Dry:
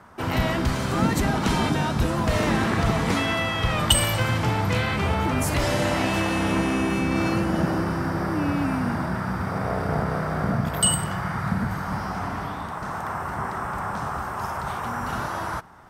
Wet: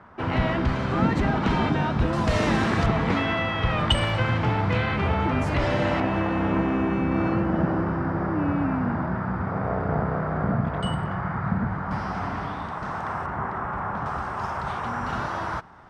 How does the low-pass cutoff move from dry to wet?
2.8 kHz
from 2.13 s 6.7 kHz
from 2.86 s 2.9 kHz
from 6.00 s 1.7 kHz
from 11.91 s 4.5 kHz
from 13.26 s 2.2 kHz
from 14.06 s 4.7 kHz

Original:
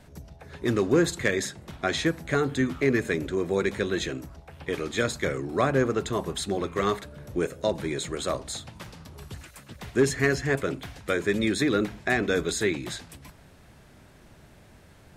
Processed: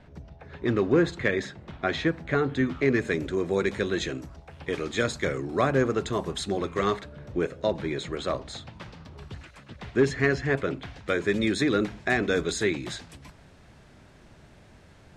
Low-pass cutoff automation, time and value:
2.48 s 3.3 kHz
3.22 s 7.6 kHz
6.76 s 7.6 kHz
7.16 s 4.2 kHz
10.85 s 4.2 kHz
11.41 s 7.5 kHz

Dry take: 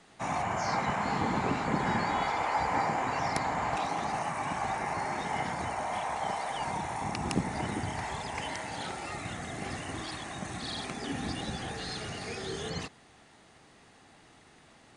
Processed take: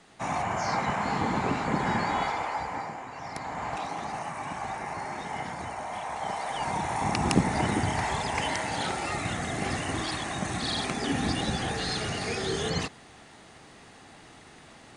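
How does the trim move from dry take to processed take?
2.23 s +2 dB
3.10 s -10 dB
3.65 s -2 dB
5.97 s -2 dB
7.15 s +7 dB

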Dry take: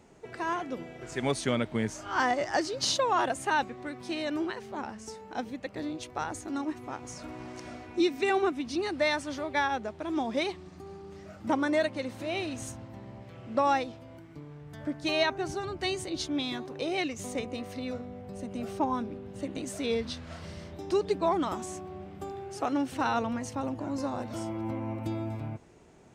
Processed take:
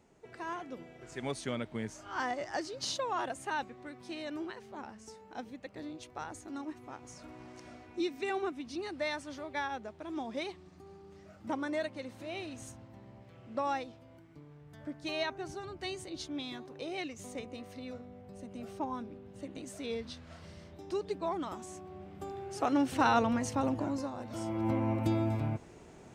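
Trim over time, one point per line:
21.61 s -8 dB
22.97 s +2 dB
23.82 s +2 dB
24.14 s -8 dB
24.71 s +3.5 dB

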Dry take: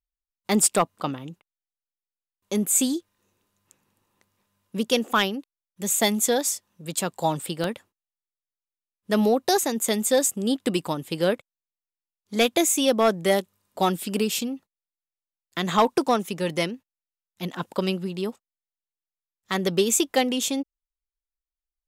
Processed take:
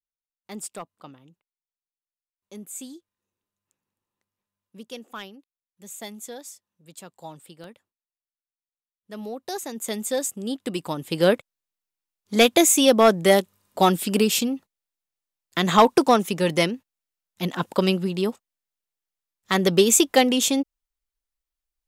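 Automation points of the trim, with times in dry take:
9.12 s -16 dB
9.93 s -5 dB
10.70 s -5 dB
11.27 s +4.5 dB

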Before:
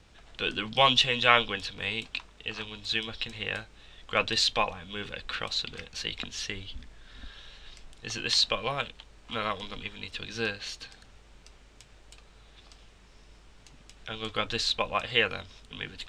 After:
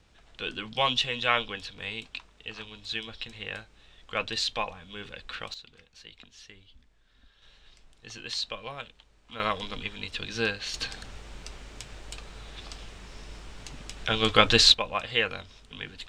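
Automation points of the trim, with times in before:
-4 dB
from 5.54 s -15 dB
from 7.42 s -8 dB
from 9.40 s +3 dB
from 10.74 s +11 dB
from 14.74 s -1 dB

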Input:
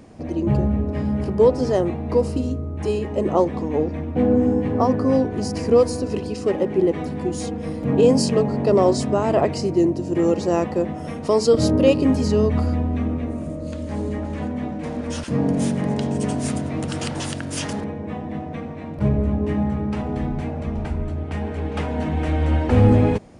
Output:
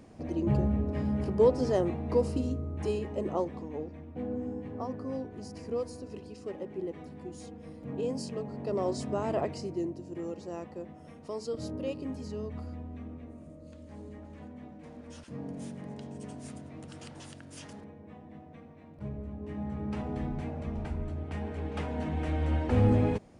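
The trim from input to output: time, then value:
2.79 s -7.5 dB
3.98 s -18 dB
8.40 s -18 dB
9.24 s -11 dB
10.33 s -19.5 dB
19.35 s -19.5 dB
19.93 s -9.5 dB

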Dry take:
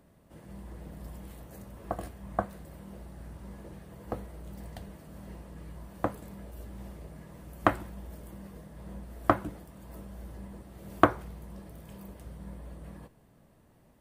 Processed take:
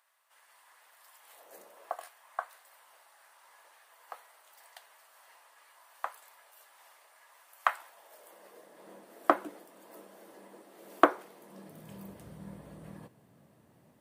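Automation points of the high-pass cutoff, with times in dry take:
high-pass 24 dB/octave
1.19 s 1 kHz
1.59 s 380 Hz
2.10 s 880 Hz
7.69 s 880 Hz
8.83 s 310 Hz
11.39 s 310 Hz
11.97 s 98 Hz

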